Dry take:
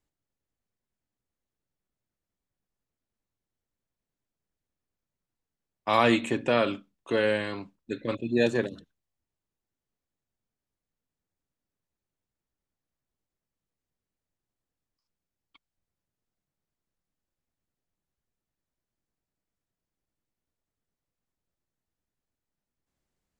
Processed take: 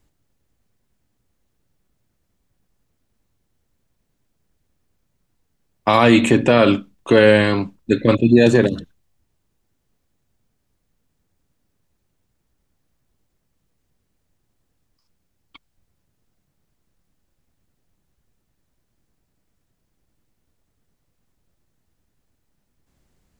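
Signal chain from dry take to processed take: low shelf 260 Hz +7 dB; maximiser +15 dB; gain -1 dB

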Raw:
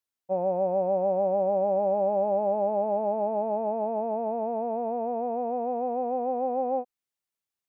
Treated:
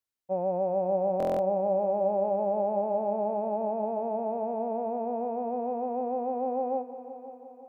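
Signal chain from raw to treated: low shelf 150 Hz +4.5 dB; multi-head echo 0.175 s, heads all three, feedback 57%, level -18 dB; stuck buffer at 1.18, samples 1024, times 8; gain -2.5 dB

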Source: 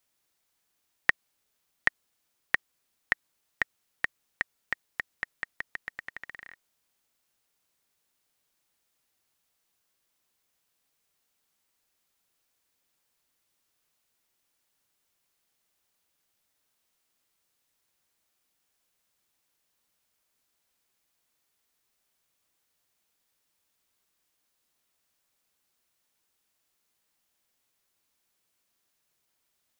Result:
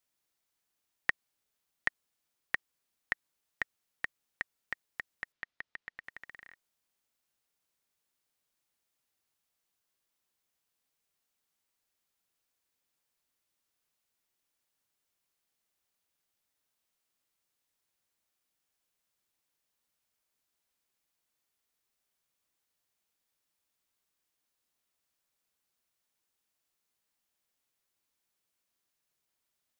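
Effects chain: 5.32–6.04 Chebyshev low-pass 4100 Hz, order 2; gain -6.5 dB

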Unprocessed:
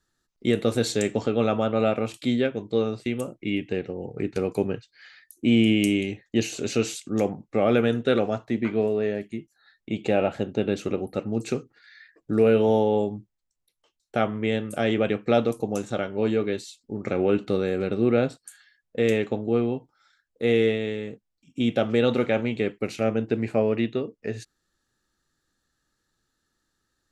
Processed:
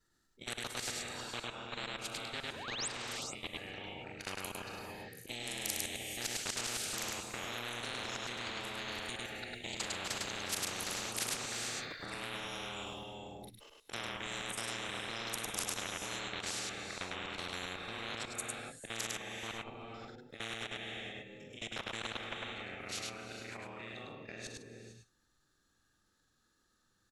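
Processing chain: short-time reversal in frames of 86 ms; Doppler pass-by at 10.86, 9 m/s, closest 12 m; level quantiser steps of 21 dB; echo 0.103 s -3.5 dB; painted sound rise, 2.5–2.88, 290–9000 Hz -56 dBFS; non-linear reverb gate 0.48 s rising, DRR 11.5 dB; spectral compressor 10:1; gain +9 dB

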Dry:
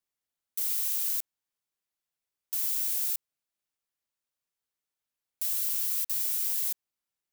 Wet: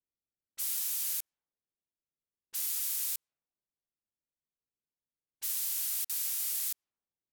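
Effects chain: low-pass opened by the level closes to 400 Hz, open at -30 dBFS

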